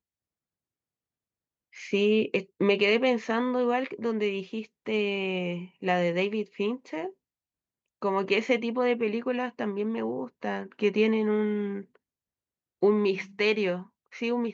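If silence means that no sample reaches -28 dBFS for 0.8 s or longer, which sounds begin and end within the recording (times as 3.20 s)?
1.93–7.07 s
8.02–11.78 s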